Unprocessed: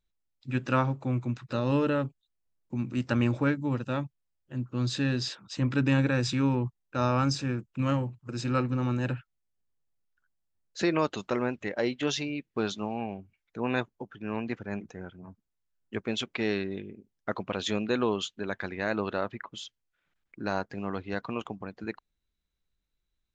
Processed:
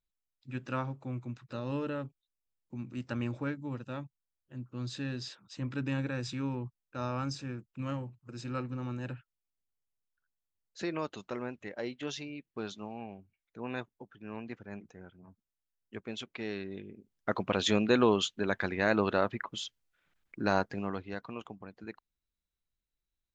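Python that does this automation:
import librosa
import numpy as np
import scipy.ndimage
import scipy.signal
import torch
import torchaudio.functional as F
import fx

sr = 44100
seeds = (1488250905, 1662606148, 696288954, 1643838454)

y = fx.gain(x, sr, db=fx.line((16.51, -9.0), (17.47, 2.5), (20.63, 2.5), (21.23, -8.0)))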